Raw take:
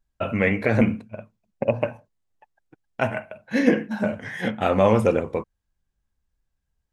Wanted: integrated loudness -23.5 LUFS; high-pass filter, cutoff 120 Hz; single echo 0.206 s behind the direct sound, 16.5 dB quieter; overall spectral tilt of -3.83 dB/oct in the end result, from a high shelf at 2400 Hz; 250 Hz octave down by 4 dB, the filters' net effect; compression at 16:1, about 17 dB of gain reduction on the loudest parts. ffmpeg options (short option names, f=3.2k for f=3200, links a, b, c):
-af "highpass=120,equalizer=f=250:t=o:g=-4.5,highshelf=f=2.4k:g=6.5,acompressor=threshold=-31dB:ratio=16,aecho=1:1:206:0.15,volume=13.5dB"